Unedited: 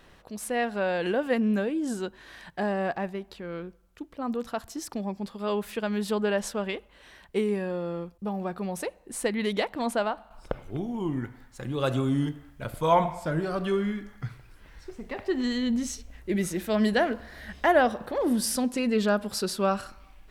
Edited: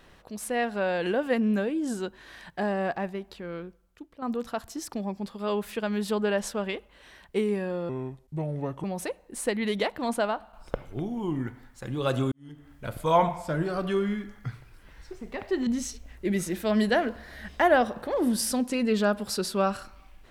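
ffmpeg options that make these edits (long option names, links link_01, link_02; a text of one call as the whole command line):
ffmpeg -i in.wav -filter_complex "[0:a]asplit=6[link_01][link_02][link_03][link_04][link_05][link_06];[link_01]atrim=end=4.22,asetpts=PTS-STARTPTS,afade=type=out:start_time=3.47:duration=0.75:silence=0.375837[link_07];[link_02]atrim=start=4.22:end=7.894,asetpts=PTS-STARTPTS,afade=type=in:duration=0.004:curve=hsin:silence=0.375837[link_08];[link_03]atrim=start=7.89:end=8.61,asetpts=PTS-STARTPTS,asetrate=33516,aresample=44100[link_09];[link_04]atrim=start=8.606:end=12.09,asetpts=PTS-STARTPTS,afade=type=out:start_time=3.48:duration=0.004:curve=hsin[link_10];[link_05]atrim=start=12.09:end=15.442,asetpts=PTS-STARTPTS,afade=type=in:duration=0.42:curve=qua[link_11];[link_06]atrim=start=15.708[link_12];[link_07][link_08]concat=n=2:v=0:a=1[link_13];[link_13][link_09]acrossfade=duration=0.004:curve1=hsin:curve2=hsin[link_14];[link_10][link_11]concat=n=2:v=0:a=1[link_15];[link_14][link_15]acrossfade=duration=0.004:curve1=hsin:curve2=hsin[link_16];[link_16][link_12]acrossfade=duration=0.004:curve1=hsin:curve2=hsin" out.wav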